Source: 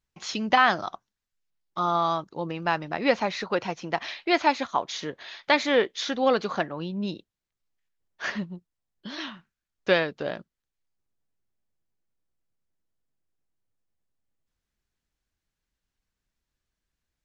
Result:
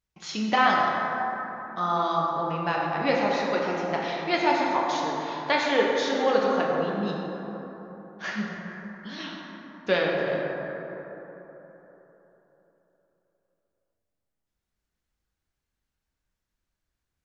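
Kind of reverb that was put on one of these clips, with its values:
dense smooth reverb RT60 3.8 s, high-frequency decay 0.35×, DRR −3 dB
level −4 dB

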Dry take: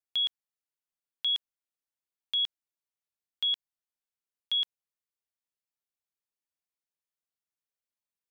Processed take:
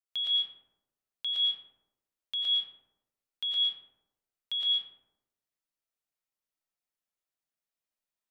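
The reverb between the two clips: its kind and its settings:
comb and all-pass reverb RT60 0.93 s, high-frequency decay 0.4×, pre-delay 70 ms, DRR −4.5 dB
level −4.5 dB

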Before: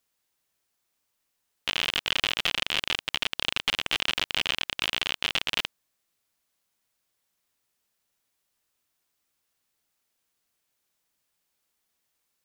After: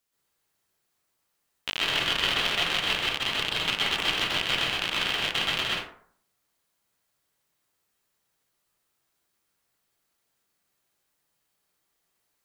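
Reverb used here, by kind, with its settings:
dense smooth reverb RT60 0.58 s, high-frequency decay 0.45×, pre-delay 115 ms, DRR −6 dB
level −3.5 dB

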